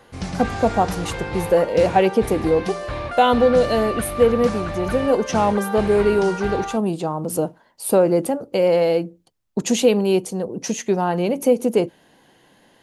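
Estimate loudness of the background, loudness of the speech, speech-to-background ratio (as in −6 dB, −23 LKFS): −28.5 LKFS, −20.0 LKFS, 8.5 dB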